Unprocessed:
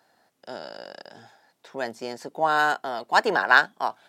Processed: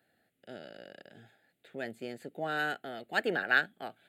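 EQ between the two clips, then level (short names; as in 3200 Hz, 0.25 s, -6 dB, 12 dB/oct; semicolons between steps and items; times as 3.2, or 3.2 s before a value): low shelf 120 Hz +7.5 dB; fixed phaser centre 2400 Hz, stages 4; -5.0 dB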